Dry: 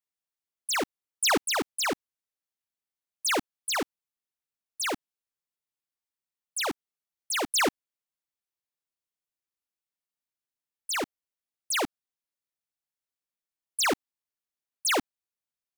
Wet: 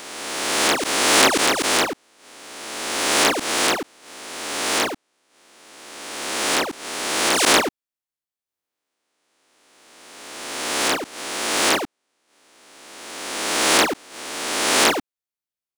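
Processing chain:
peak hold with a rise ahead of every peak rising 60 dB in 1.91 s
transient designer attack −1 dB, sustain −6 dB
level +1.5 dB

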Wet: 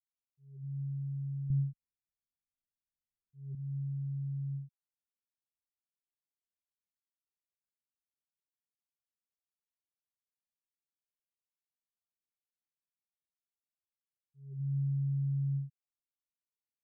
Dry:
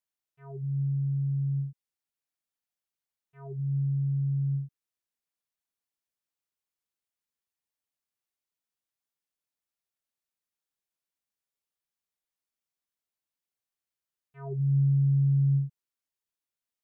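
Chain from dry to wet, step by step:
inverse Chebyshev low-pass filter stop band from 690 Hz, stop band 50 dB
0:01.50–0:03.55: spectral tilt −3 dB per octave
level −9 dB

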